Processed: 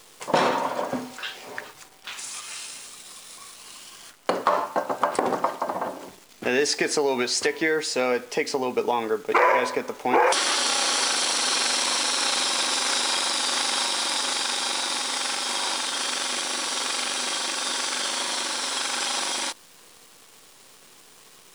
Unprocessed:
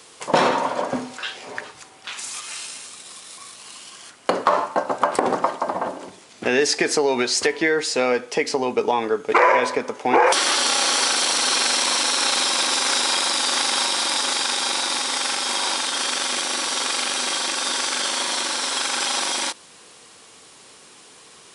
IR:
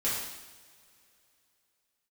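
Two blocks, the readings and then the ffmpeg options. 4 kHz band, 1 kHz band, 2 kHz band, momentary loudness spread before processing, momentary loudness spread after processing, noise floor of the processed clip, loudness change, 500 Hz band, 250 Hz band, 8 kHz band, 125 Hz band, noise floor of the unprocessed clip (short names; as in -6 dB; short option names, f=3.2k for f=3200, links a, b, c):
-3.5 dB, -3.5 dB, -3.5 dB, 16 LU, 16 LU, -52 dBFS, -3.5 dB, -3.5 dB, -3.5 dB, -3.5 dB, -3.5 dB, -48 dBFS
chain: -af "acrusher=bits=8:dc=4:mix=0:aa=0.000001,volume=-3.5dB"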